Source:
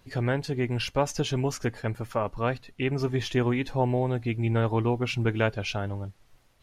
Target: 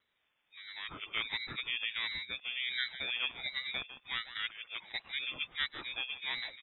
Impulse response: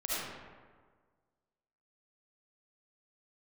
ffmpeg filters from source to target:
-filter_complex "[0:a]areverse,highpass=frequency=140:width=0.5412,highpass=frequency=140:width=1.3066,afreqshift=270,asplit=2[link_01][link_02];[link_02]aecho=0:1:152:0.224[link_03];[link_01][link_03]amix=inputs=2:normalize=0,lowpass=frequency=3000:width_type=q:width=0.5098,lowpass=frequency=3000:width_type=q:width=0.6013,lowpass=frequency=3000:width_type=q:width=0.9,lowpass=frequency=3000:width_type=q:width=2.563,afreqshift=-3500,aeval=exprs='val(0)*sin(2*PI*620*n/s+620*0.4/1.4*sin(2*PI*1.4*n/s))':channel_layout=same,volume=-7.5dB"

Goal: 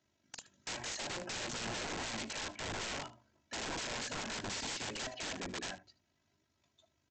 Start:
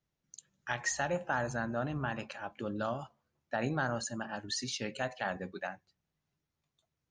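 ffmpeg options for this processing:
ffmpeg -i in.wav -af "highpass=frequency=79:width=0.5412,highpass=frequency=79:width=1.3066,bandreject=frequency=60:width_type=h:width=6,bandreject=frequency=120:width_type=h:width=6,bandreject=frequency=180:width_type=h:width=6,bandreject=frequency=240:width_type=h:width=6,bandreject=frequency=300:width_type=h:width=6,bandreject=frequency=360:width_type=h:width=6,bandreject=frequency=420:width_type=h:width=6,tremolo=f=50:d=0.519,equalizer=frequency=220:width_type=o:width=0.24:gain=3,aecho=1:1:3.1:0.67,acompressor=threshold=-42dB:ratio=8,aresample=16000,aeval=exprs='(mod(188*val(0)+1,2)-1)/188':channel_layout=same,aresample=44100,bandreject=frequency=1200:width=12,aecho=1:1:75:0.133,volume=10.5dB" out.wav

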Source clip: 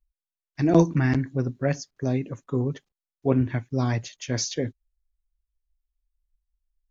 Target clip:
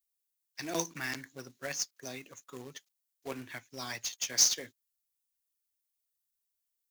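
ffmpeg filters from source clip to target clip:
ffmpeg -i in.wav -filter_complex "[0:a]aderivative,acrossover=split=160[link_01][link_02];[link_02]acrusher=bits=2:mode=log:mix=0:aa=0.000001[link_03];[link_01][link_03]amix=inputs=2:normalize=0,volume=7dB" out.wav

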